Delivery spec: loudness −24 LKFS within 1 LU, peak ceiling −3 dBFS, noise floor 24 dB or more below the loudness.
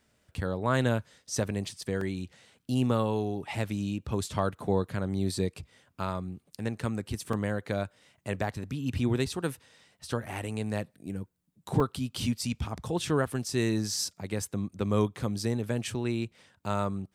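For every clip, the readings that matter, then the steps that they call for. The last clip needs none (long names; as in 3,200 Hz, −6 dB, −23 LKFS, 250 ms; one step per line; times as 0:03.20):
number of dropouts 3; longest dropout 2.9 ms; integrated loudness −31.5 LKFS; sample peak −12.5 dBFS; target loudness −24.0 LKFS
→ repair the gap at 0:02.01/0:07.33/0:11.80, 2.9 ms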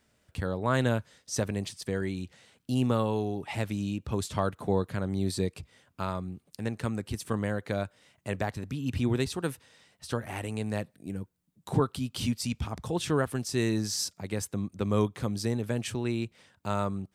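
number of dropouts 0; integrated loudness −31.5 LKFS; sample peak −12.5 dBFS; target loudness −24.0 LKFS
→ level +7.5 dB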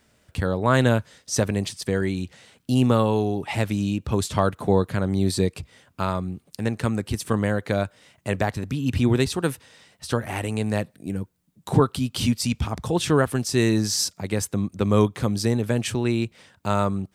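integrated loudness −24.0 LKFS; sample peak −5.0 dBFS; background noise floor −65 dBFS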